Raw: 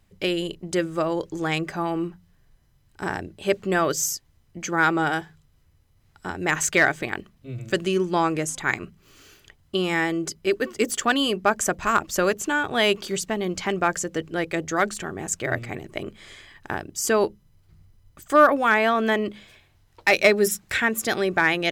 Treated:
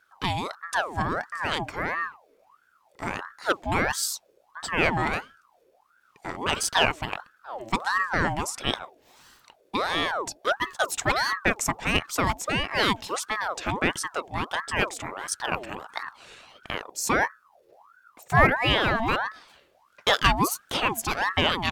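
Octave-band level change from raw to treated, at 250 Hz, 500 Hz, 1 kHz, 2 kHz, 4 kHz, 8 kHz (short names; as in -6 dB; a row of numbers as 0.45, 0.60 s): -6.0, -7.0, -1.0, -2.0, +2.0, -3.5 dB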